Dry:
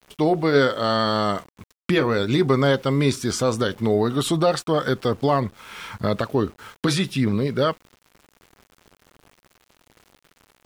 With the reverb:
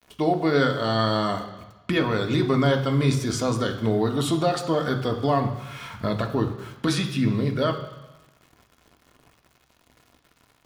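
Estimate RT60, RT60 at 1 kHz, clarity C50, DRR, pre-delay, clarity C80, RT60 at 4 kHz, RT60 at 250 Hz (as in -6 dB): 1.1 s, 1.1 s, 9.5 dB, 3.0 dB, 3 ms, 11.5 dB, 1.1 s, 1.1 s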